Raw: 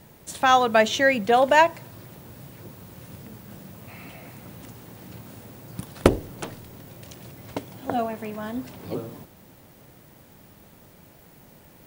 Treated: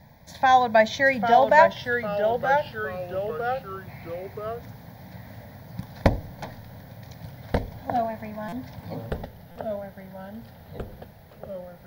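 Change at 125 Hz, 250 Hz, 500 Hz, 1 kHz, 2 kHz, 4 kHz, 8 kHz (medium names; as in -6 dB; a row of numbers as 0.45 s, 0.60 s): +2.5 dB, -2.5 dB, +1.5 dB, +2.0 dB, +1.0 dB, -5.0 dB, no reading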